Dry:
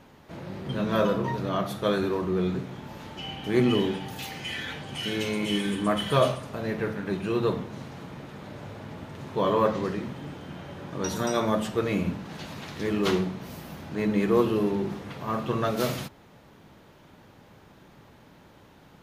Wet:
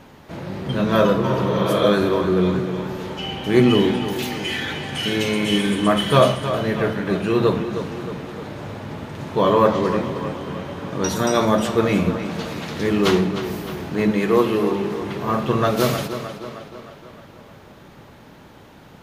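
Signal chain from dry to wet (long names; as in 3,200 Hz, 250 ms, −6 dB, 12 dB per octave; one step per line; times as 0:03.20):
0:01.30–0:01.84: healed spectral selection 270–4,400 Hz both
0:14.11–0:15.00: low-shelf EQ 290 Hz −7.5 dB
tape delay 309 ms, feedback 59%, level −9 dB, low-pass 5,300 Hz
level +7.5 dB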